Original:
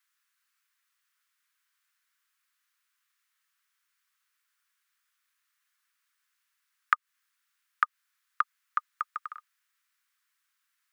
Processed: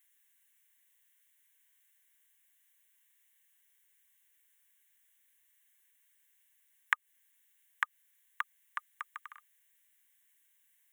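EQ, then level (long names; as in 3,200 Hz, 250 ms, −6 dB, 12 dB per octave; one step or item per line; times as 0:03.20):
high-shelf EQ 2,800 Hz +11.5 dB
phaser with its sweep stopped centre 1,300 Hz, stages 6
notch filter 2,500 Hz, Q 9.8
0.0 dB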